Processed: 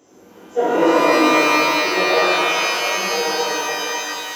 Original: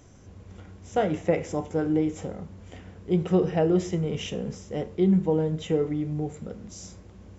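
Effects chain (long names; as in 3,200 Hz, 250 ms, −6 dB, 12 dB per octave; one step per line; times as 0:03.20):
high-pass filter sweep 340 Hz → 700 Hz, 0:02.02–0:03.70
time stretch by phase vocoder 0.59×
reverb with rising layers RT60 3 s, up +12 semitones, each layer −2 dB, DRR −11 dB
level −1.5 dB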